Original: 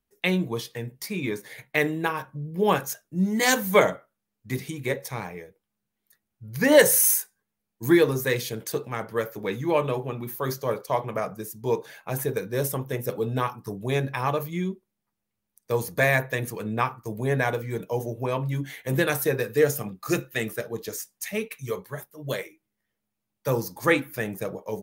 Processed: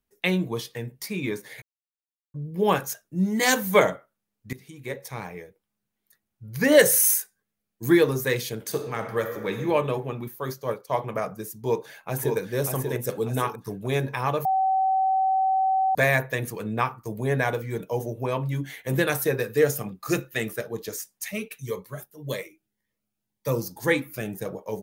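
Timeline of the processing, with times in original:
0:01.62–0:02.34: silence
0:04.53–0:05.38: fade in linear, from −19.5 dB
0:06.63–0:07.92: parametric band 920 Hz −9.5 dB 0.21 octaves
0:08.58–0:09.58: thrown reverb, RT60 1.4 s, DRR 6 dB
0:10.28–0:10.98: expander for the loud parts, over −36 dBFS
0:11.60–0:12.37: delay throw 590 ms, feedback 45%, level −4.5 dB
0:13.02–0:13.46: parametric band 8,000 Hz +8 dB 0.98 octaves
0:14.45–0:15.95: beep over 764 Hz −19 dBFS
0:21.31–0:24.46: phaser whose notches keep moving one way rising 1.8 Hz

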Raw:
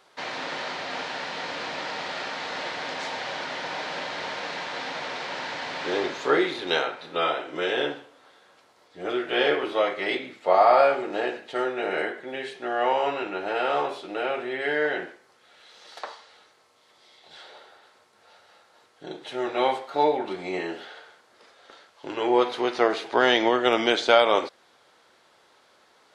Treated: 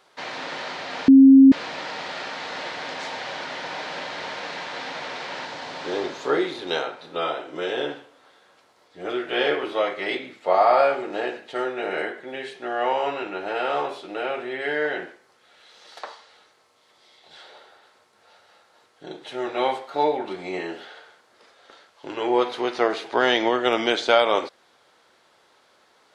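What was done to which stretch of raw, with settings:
0:01.08–0:01.52: beep over 269 Hz −6.5 dBFS
0:05.45–0:07.89: parametric band 2,100 Hz −4.5 dB 1.4 octaves

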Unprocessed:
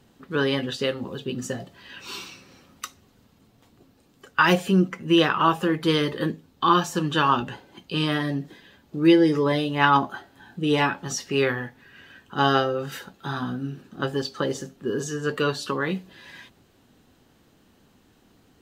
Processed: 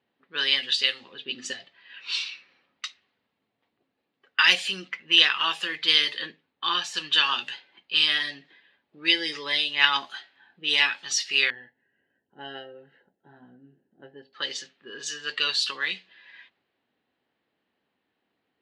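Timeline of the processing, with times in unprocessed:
0:01.11–0:01.52: parametric band 290 Hz +4.5 dB → +12 dB 1.3 octaves
0:06.21–0:06.94: high-shelf EQ 2,700 Hz −7 dB
0:11.50–0:14.33: moving average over 37 samples
whole clip: meter weighting curve ITU-R 468; low-pass that shuts in the quiet parts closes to 740 Hz, open at −20.5 dBFS; flat-topped bell 2,900 Hz +10.5 dB; level −10 dB

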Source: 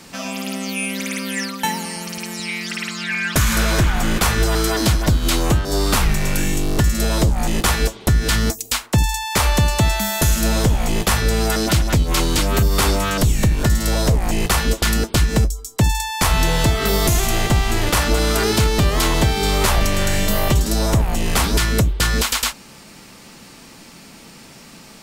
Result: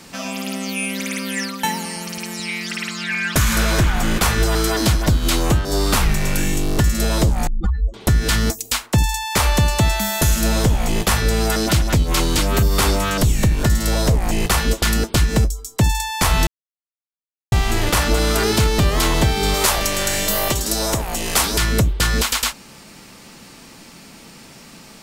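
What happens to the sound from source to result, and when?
0:07.47–0:07.94: expanding power law on the bin magnitudes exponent 3.7
0:16.47–0:17.52: silence
0:19.54–0:21.58: bass and treble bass −9 dB, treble +5 dB

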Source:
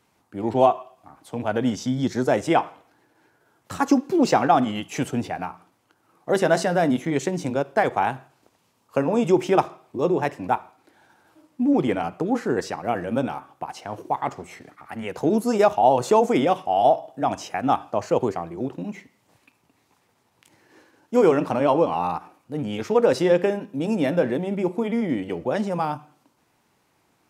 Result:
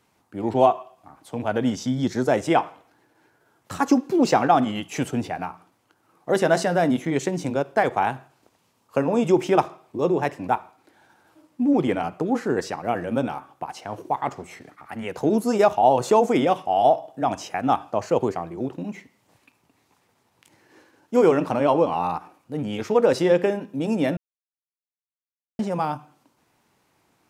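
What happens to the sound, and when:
0:24.17–0:25.59: silence

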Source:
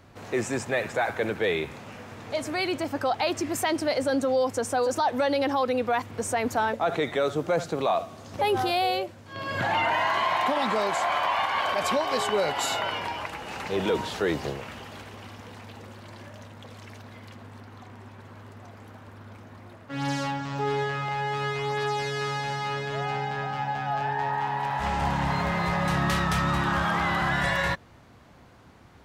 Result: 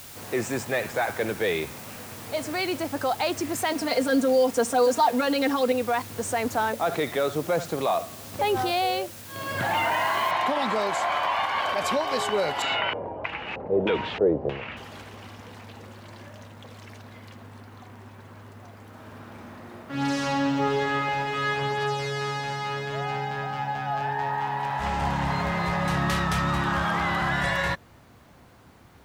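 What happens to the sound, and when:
0:03.71–0:05.72: comb filter 4.3 ms, depth 95%
0:10.31: noise floor change −44 dB −69 dB
0:12.62–0:14.77: auto-filter low-pass square 1.6 Hz 540–2,600 Hz
0:18.88–0:21.50: thrown reverb, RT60 2.7 s, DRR −3 dB

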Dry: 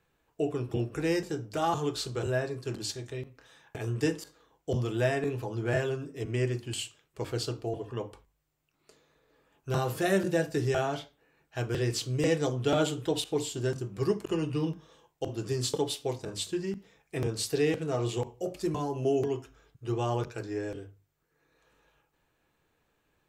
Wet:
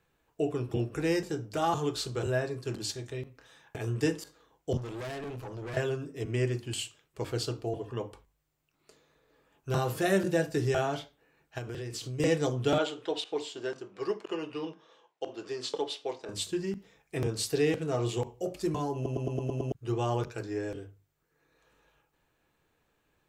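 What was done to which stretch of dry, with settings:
0:04.77–0:05.77: tube saturation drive 36 dB, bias 0.6
0:11.58–0:12.20: downward compressor 10 to 1, threshold −34 dBFS
0:12.78–0:16.29: band-pass filter 420–4,400 Hz
0:18.95: stutter in place 0.11 s, 7 plays

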